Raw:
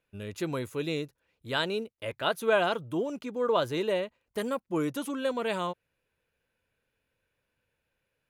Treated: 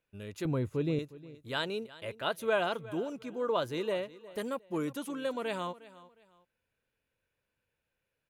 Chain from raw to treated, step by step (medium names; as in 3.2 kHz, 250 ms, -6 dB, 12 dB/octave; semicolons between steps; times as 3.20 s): 0.45–0.99 s: tilt EQ -3.5 dB/octave; feedback delay 359 ms, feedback 29%, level -18.5 dB; trim -4.5 dB